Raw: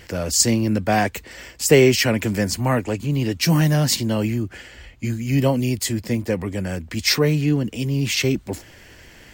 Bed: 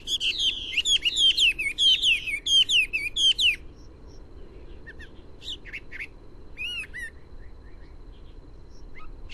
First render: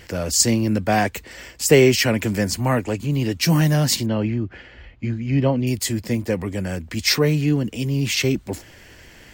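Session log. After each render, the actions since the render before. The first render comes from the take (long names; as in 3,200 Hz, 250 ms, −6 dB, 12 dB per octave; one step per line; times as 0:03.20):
0:04.06–0:05.67: high-frequency loss of the air 230 metres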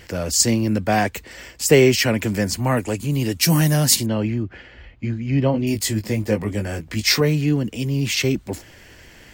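0:02.77–0:04.43: parametric band 11,000 Hz +11.5 dB 1.1 octaves
0:05.52–0:07.21: double-tracking delay 19 ms −4.5 dB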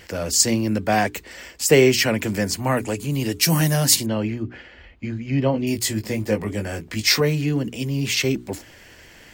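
low-shelf EQ 160 Hz −4.5 dB
mains-hum notches 60/120/180/240/300/360/420 Hz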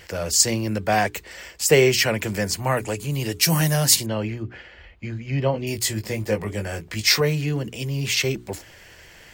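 parametric band 260 Hz −9.5 dB 0.53 octaves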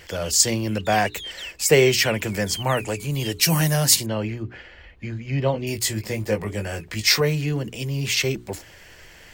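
mix in bed −16.5 dB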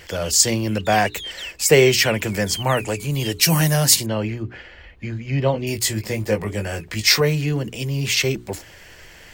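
level +2.5 dB
brickwall limiter −1 dBFS, peak gain reduction 1.5 dB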